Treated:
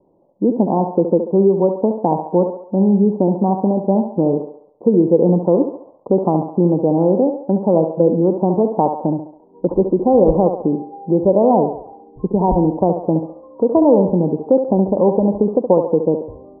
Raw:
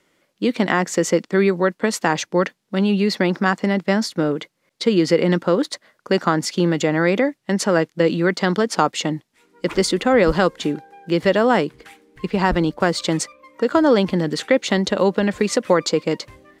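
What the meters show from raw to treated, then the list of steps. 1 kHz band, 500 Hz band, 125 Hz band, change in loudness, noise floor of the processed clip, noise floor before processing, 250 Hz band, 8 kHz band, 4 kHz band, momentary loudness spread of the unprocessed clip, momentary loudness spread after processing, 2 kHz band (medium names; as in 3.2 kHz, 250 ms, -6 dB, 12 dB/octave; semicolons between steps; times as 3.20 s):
+2.0 dB, +4.0 dB, +4.0 dB, +3.0 dB, -48 dBFS, -69 dBFS, +4.0 dB, under -40 dB, under -40 dB, 8 LU, 8 LU, under -40 dB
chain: steep low-pass 940 Hz 72 dB/octave; in parallel at +1.5 dB: compression, threshold -29 dBFS, peak gain reduction 17 dB; on the sum: thinning echo 69 ms, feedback 56%, high-pass 340 Hz, level -6 dB; trim +1.5 dB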